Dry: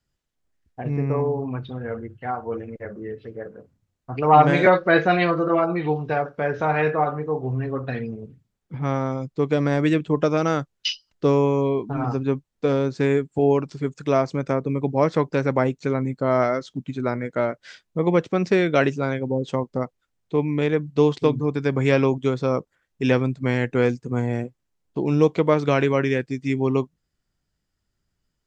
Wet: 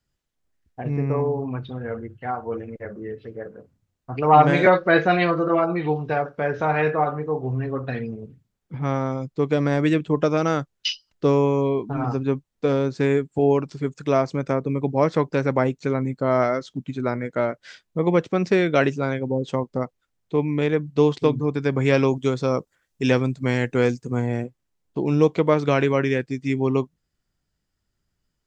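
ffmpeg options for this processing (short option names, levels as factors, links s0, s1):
-filter_complex "[0:a]asettb=1/sr,asplit=3[s0][s1][s2];[s0]atrim=end=21.944[s3];[s1]atrim=start=21.94:end=24.17,asetpts=PTS-STARTPTS,afade=t=in:d=0.004:c=qsin,afade=t=out:st=2.226:d=0.004:c=qsin,bass=f=250:g=0,treble=f=4000:g=7[s4];[s2]atrim=start=24.166[s5];[s3][s4]acrossfade=d=0.004:c1=hsin:c2=qsin[s6];[s6][s5]acrossfade=d=0.004:c1=qsin:c2=hsin"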